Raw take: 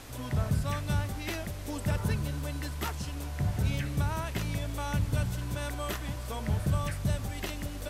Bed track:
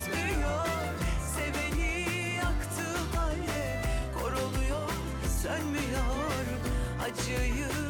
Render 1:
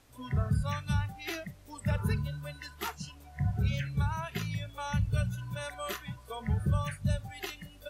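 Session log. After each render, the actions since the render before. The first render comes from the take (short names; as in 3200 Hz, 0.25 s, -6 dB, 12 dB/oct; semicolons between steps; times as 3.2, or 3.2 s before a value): noise print and reduce 16 dB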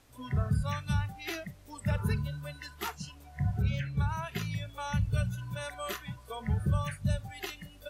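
3.61–4.08 high shelf 4000 Hz -> 6500 Hz -8 dB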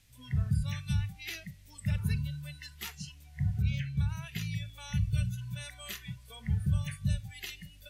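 band shelf 610 Hz -14.5 dB 2.8 oct; de-hum 385.7 Hz, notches 25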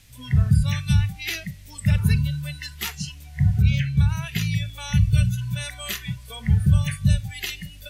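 gain +11.5 dB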